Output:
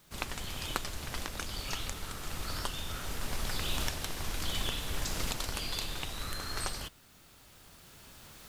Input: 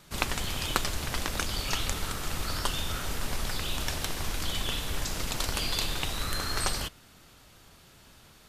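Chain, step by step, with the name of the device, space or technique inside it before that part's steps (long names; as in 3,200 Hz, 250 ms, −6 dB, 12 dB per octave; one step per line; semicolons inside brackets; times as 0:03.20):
cheap recorder with automatic gain (white noise bed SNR 28 dB; camcorder AGC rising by 5.9 dB per second)
level −8.5 dB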